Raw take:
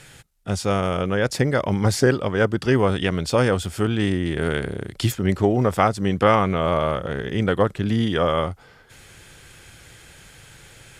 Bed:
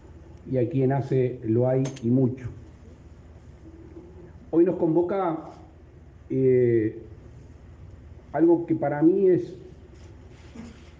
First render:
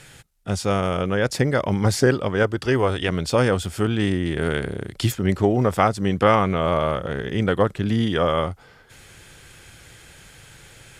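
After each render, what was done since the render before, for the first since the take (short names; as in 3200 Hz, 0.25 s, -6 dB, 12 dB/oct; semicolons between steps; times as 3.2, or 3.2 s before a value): 2.43–3.09 bell 190 Hz -8 dB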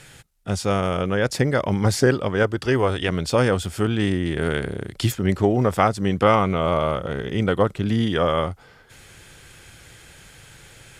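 6.22–7.85 notch 1700 Hz, Q 8.8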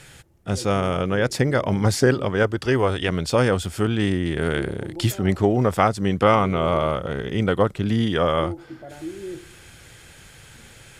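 add bed -14.5 dB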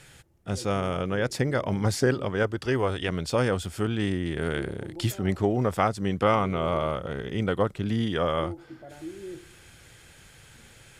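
gain -5.5 dB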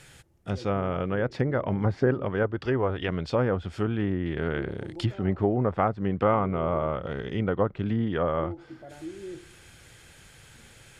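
treble ducked by the level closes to 1500 Hz, closed at -21.5 dBFS; dynamic EQ 8100 Hz, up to -6 dB, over -55 dBFS, Q 0.95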